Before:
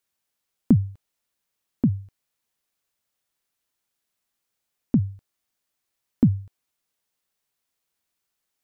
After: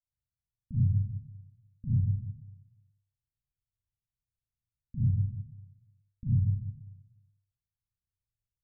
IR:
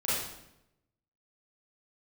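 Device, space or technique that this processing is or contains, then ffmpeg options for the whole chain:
club heard from the street: -filter_complex "[0:a]alimiter=limit=-16.5dB:level=0:latency=1:release=433,lowpass=frequency=120:width=0.5412,lowpass=frequency=120:width=1.3066[link_01];[1:a]atrim=start_sample=2205[link_02];[link_01][link_02]afir=irnorm=-1:irlink=0"

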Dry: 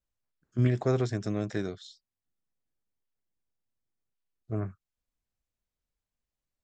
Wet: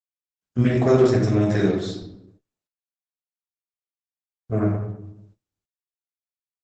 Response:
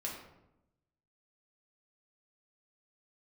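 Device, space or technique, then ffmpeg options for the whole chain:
speakerphone in a meeting room: -filter_complex "[1:a]atrim=start_sample=2205[link_01];[0:a][link_01]afir=irnorm=-1:irlink=0,asplit=2[link_02][link_03];[link_03]adelay=130,highpass=300,lowpass=3400,asoftclip=type=hard:threshold=-24dB,volume=-22dB[link_04];[link_02][link_04]amix=inputs=2:normalize=0,dynaudnorm=framelen=140:gausssize=3:maxgain=12.5dB,agate=range=-34dB:threshold=-51dB:ratio=16:detection=peak,volume=-1dB" -ar 48000 -c:a libopus -b:a 12k

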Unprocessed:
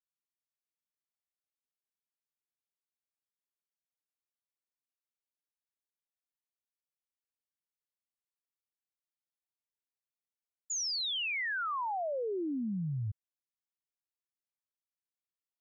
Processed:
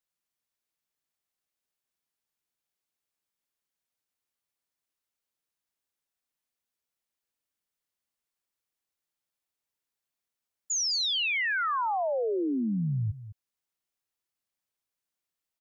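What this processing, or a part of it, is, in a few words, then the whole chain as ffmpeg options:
ducked delay: -filter_complex "[0:a]asplit=3[link_01][link_02][link_03];[link_02]adelay=207,volume=-7.5dB[link_04];[link_03]apad=whole_len=697250[link_05];[link_04][link_05]sidechaincompress=threshold=-41dB:ratio=8:attack=16:release=1330[link_06];[link_01][link_06]amix=inputs=2:normalize=0,volume=6dB"

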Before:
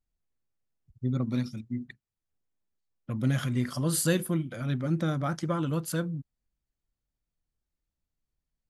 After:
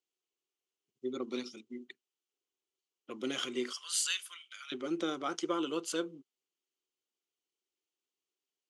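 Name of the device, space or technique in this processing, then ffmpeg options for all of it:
phone speaker on a table: -filter_complex "[0:a]asettb=1/sr,asplit=3[link_01][link_02][link_03];[link_01]atrim=end=3.724[link_04];[link_02]atrim=start=3.72:end=4.72,asetpts=PTS-STARTPTS,afade=type=in:duration=0.004:curve=qsin,afade=type=out:start_time=0.996:duration=0.004:curve=qsin,highpass=frequency=1400:width=0.5412,highpass=frequency=1400:width=1.3066[link_05];[link_03]atrim=start=4.716[link_06];[link_04][link_05]acrossfade=duration=0.004:curve1=hsin:curve2=qsin[link_07];[link_07][link_06]acrossfade=duration=0.004:curve1=qsin:curve2=hsin,highpass=frequency=340:width=0.5412,highpass=frequency=340:width=1.3066,equalizer=frequency=380:width_type=q:width=4:gain=8,equalizer=frequency=610:width_type=q:width=4:gain=-9,equalizer=frequency=900:width_type=q:width=4:gain=-4,equalizer=frequency=1700:width_type=q:width=4:gain=-9,equalizer=frequency=3000:width_type=q:width=4:gain=9,equalizer=frequency=6400:width_type=q:width=4:gain=4,lowpass=frequency=8500:width=0.5412,lowpass=frequency=8500:width=1.3066"

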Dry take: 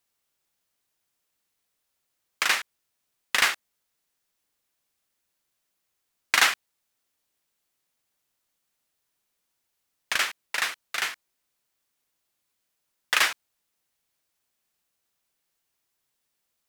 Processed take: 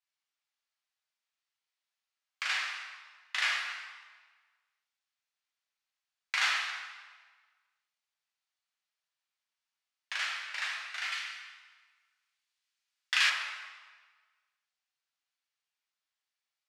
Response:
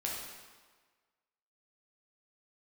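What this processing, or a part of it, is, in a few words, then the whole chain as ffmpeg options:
supermarket ceiling speaker: -filter_complex "[0:a]highpass=210,lowpass=5400[link_01];[1:a]atrim=start_sample=2205[link_02];[link_01][link_02]afir=irnorm=-1:irlink=0,highpass=1100,asettb=1/sr,asplit=3[link_03][link_04][link_05];[link_03]atrim=end=11.124[link_06];[link_04]atrim=start=11.12:end=13.3,asetpts=PTS-STARTPTS,afade=type=in:duration=0.004:curve=qsin,afade=type=out:start_time=2.176:duration=0.004:curve=qsin,tiltshelf=frequency=970:gain=-6.5[link_07];[link_05]atrim=start=13.296[link_08];[link_06][link_07]acrossfade=duration=0.004:curve1=hsin:curve2=qsin[link_09];[link_09][link_08]acrossfade=duration=0.004:curve1=qsin:curve2=hsin,volume=-8.5dB"

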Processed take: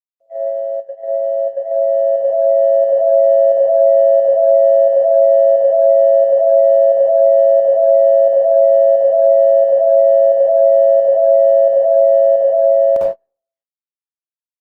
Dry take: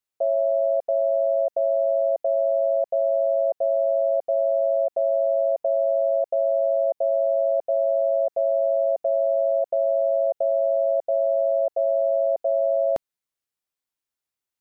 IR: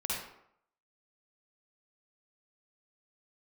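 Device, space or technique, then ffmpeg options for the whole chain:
speakerphone in a meeting room: -filter_complex "[1:a]atrim=start_sample=2205[link_01];[0:a][link_01]afir=irnorm=-1:irlink=0,asplit=2[link_02][link_03];[link_03]adelay=170,highpass=300,lowpass=3400,asoftclip=type=hard:threshold=-19dB,volume=-26dB[link_04];[link_02][link_04]amix=inputs=2:normalize=0,dynaudnorm=framelen=650:gausssize=7:maxgain=9dB,agate=range=-34dB:threshold=-16dB:ratio=16:detection=peak" -ar 48000 -c:a libopus -b:a 24k

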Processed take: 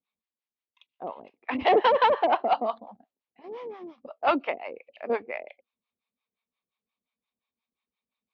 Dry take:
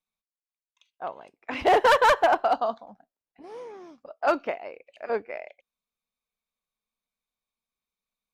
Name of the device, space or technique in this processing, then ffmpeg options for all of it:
guitar amplifier with harmonic tremolo: -filter_complex "[0:a]acrossover=split=600[link_01][link_02];[link_01]aeval=exprs='val(0)*(1-1/2+1/2*cos(2*PI*5.7*n/s))':channel_layout=same[link_03];[link_02]aeval=exprs='val(0)*(1-1/2-1/2*cos(2*PI*5.7*n/s))':channel_layout=same[link_04];[link_03][link_04]amix=inputs=2:normalize=0,asoftclip=type=tanh:threshold=-19.5dB,highpass=95,equalizer=frequency=150:width_type=q:width=4:gain=-7,equalizer=frequency=240:width_type=q:width=4:gain=5,equalizer=frequency=650:width_type=q:width=4:gain=-3,equalizer=frequency=1500:width_type=q:width=4:gain=-8,lowpass=frequency=3700:width=0.5412,lowpass=frequency=3700:width=1.3066,asettb=1/sr,asplit=3[link_05][link_06][link_07];[link_05]atrim=end=1.674[link_08];[link_06]atrim=start=1.67:end=2.78,asetpts=PTS-STARTPTS,afade=type=in:duration=0.004:curve=qsin,afade=type=out:start_time=1.106:duration=0.004:curve=qsin,highpass=170[link_09];[link_07]atrim=start=2.776[link_10];[link_08][link_09]acrossfade=duration=0.004:curve1=hsin:curve2=qsin[link_11];[link_11][link_10]acrossfade=duration=0.004:curve1=qsin:curve2=hsin,volume=8dB"

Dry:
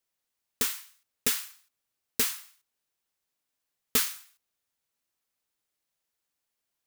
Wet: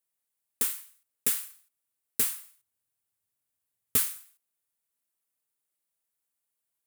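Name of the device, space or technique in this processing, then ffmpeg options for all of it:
budget condenser microphone: -filter_complex "[0:a]highpass=60,highshelf=frequency=7300:width_type=q:width=1.5:gain=6.5,asettb=1/sr,asplit=3[link_01][link_02][link_03];[link_01]atrim=end=2.204[link_04];[link_02]atrim=start=2.2:end=4,asetpts=PTS-STARTPTS,afade=type=in:duration=0.004:curve=qsin,afade=type=out:start_time=1.796:duration=0.004:curve=qsin,equalizer=frequency=100:width=1.5:gain=15[link_05];[link_03]atrim=start=3.996[link_06];[link_04][link_05]acrossfade=duration=0.004:curve1=hsin:curve2=qsin[link_07];[link_07][link_06]acrossfade=duration=0.004:curve1=qsin:curve2=hsin,volume=-5.5dB"

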